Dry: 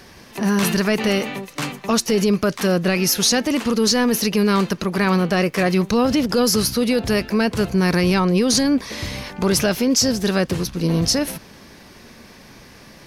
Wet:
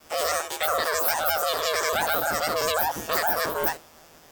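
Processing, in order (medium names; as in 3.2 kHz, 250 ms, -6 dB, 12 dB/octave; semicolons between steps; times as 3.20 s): every event in the spectrogram widened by 120 ms; expander -36 dBFS; ring modulator 26 Hz; wide varispeed 3.03×; trim -7.5 dB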